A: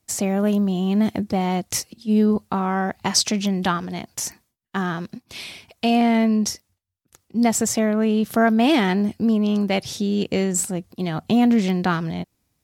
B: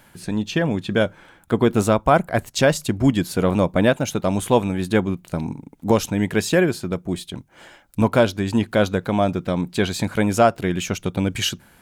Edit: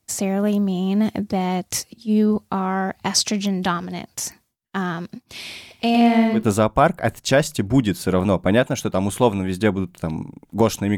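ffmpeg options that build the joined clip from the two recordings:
ffmpeg -i cue0.wav -i cue1.wav -filter_complex "[0:a]asettb=1/sr,asplit=3[link_01][link_02][link_03];[link_01]atrim=end=5.334[link_04];[link_02]atrim=start=5.33:end=6.44,asetpts=PTS-STARTPTS,afade=type=in:duration=0.004:curve=qsin,afade=type=out:start_time=1.106:duration=0.004:curve=qsin,aecho=1:1:110|220|330:0.631|0.107|0.0182,atrim=end_sample=48951[link_05];[link_03]atrim=start=6.436[link_06];[link_04][link_05]acrossfade=duration=0.004:curve1=hsin:curve2=qsin[link_07];[link_07][link_06]acrossfade=duration=0.004:curve1=qsin:curve2=hsin,apad=whole_dur=10.97,atrim=end=10.97,atrim=end=6.44,asetpts=PTS-STARTPTS[link_08];[1:a]atrim=start=1.62:end=6.27,asetpts=PTS-STARTPTS[link_09];[link_08][link_09]acrossfade=duration=0.12:curve1=tri:curve2=tri" out.wav

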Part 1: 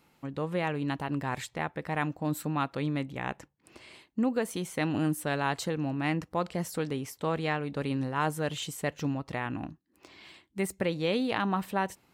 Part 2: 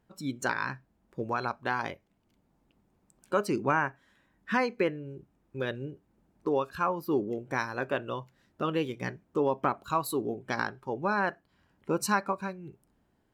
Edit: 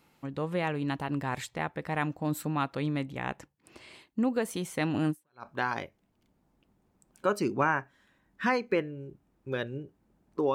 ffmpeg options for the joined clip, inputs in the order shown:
ffmpeg -i cue0.wav -i cue1.wav -filter_complex "[0:a]apad=whole_dur=10.54,atrim=end=10.54,atrim=end=5.46,asetpts=PTS-STARTPTS[link_01];[1:a]atrim=start=1.18:end=6.62,asetpts=PTS-STARTPTS[link_02];[link_01][link_02]acrossfade=duration=0.36:curve1=exp:curve2=exp" out.wav

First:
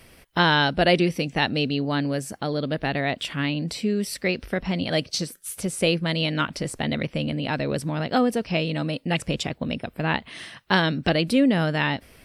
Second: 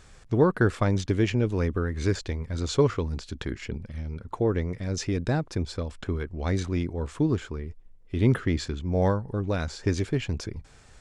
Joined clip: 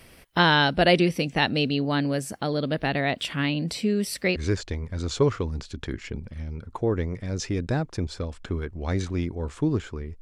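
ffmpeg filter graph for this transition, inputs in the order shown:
ffmpeg -i cue0.wav -i cue1.wav -filter_complex "[0:a]apad=whole_dur=10.21,atrim=end=10.21,atrim=end=4.362[link_01];[1:a]atrim=start=1.938:end=7.79[link_02];[link_01][link_02]acrossfade=duration=0.004:curve1=hsin:curve2=hsin" out.wav

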